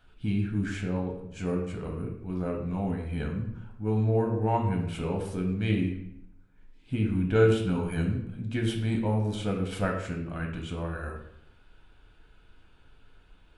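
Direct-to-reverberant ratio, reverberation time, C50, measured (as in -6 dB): 1.0 dB, 0.75 s, 6.0 dB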